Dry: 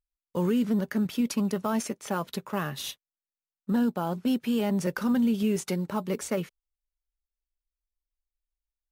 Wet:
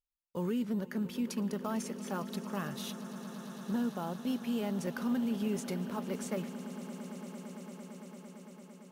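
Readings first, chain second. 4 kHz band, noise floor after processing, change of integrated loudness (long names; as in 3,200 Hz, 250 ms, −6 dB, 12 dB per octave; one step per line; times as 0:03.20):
−7.0 dB, −54 dBFS, −8.0 dB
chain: echo that builds up and dies away 113 ms, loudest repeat 8, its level −18 dB
level −8 dB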